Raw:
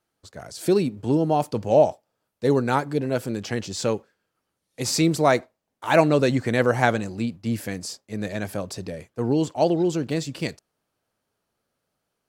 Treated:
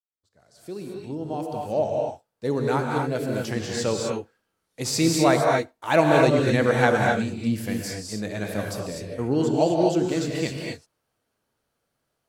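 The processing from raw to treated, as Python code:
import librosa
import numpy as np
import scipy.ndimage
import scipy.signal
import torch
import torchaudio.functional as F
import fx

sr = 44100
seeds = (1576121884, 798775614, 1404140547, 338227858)

y = fx.fade_in_head(x, sr, length_s=3.74)
y = fx.rev_gated(y, sr, seeds[0], gate_ms=280, shape='rising', drr_db=-0.5)
y = y * 10.0 ** (-2.0 / 20.0)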